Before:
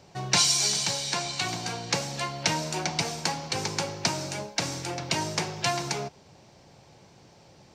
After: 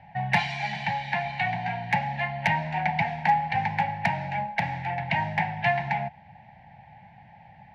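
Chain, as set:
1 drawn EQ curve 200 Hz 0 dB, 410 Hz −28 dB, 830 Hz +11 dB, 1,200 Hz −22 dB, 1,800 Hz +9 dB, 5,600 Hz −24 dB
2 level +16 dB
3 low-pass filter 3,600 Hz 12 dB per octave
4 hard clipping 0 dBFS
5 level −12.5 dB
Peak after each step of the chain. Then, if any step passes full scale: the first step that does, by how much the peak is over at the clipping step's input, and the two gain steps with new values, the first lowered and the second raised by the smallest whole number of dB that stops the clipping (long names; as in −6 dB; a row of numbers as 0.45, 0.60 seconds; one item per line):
−8.5, +7.5, +7.0, 0.0, −12.5 dBFS
step 2, 7.0 dB
step 2 +9 dB, step 5 −5.5 dB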